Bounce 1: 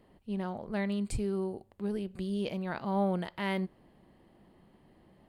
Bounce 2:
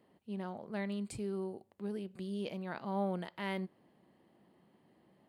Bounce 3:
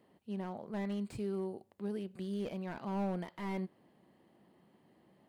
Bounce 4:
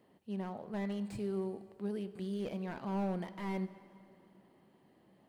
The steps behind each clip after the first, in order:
HPF 140 Hz 12 dB/oct; gain -5 dB
slew limiter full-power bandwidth 11 Hz; gain +1 dB
plate-style reverb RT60 2.9 s, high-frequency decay 0.75×, DRR 13 dB

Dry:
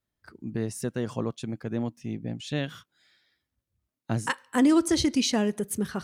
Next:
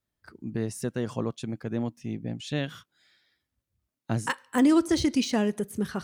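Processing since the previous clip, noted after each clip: de-esser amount 65%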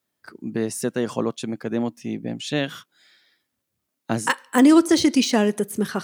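HPF 200 Hz 12 dB/oct; high shelf 9400 Hz +3.5 dB; gain +7.5 dB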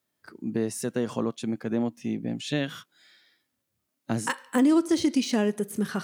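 harmonic-percussive split harmonic +7 dB; compressor 2:1, threshold -19 dBFS, peak gain reduction 9 dB; gain -5.5 dB

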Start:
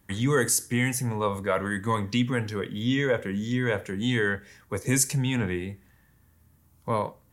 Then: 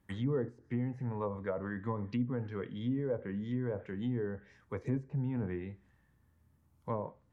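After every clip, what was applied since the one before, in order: treble ducked by the level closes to 670 Hz, closed at -21 dBFS; high shelf 3900 Hz -10 dB; gain -8 dB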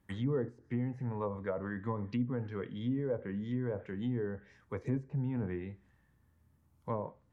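nothing audible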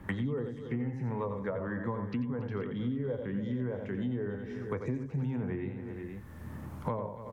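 on a send: tapped delay 87/278/365/474 ms -7.5/-17/-19.5/-17 dB; on the sum: three-band squash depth 100%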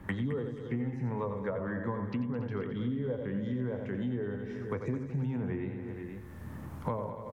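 echo 0.214 s -12.5 dB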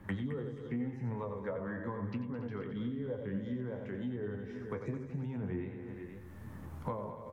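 flange 0.93 Hz, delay 9 ms, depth 6.1 ms, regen +55%

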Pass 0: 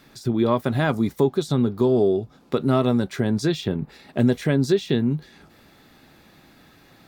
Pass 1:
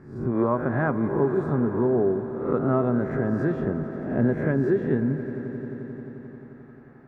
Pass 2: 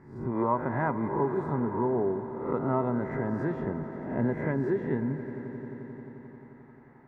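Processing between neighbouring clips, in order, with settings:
spectral swells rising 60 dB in 0.60 s; EQ curve 1700 Hz 0 dB, 3500 Hz -30 dB, 6600 Hz -28 dB; swelling echo 88 ms, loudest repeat 5, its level -17.5 dB; gain -4 dB
small resonant body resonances 930/2000 Hz, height 14 dB, ringing for 30 ms; gain -6 dB

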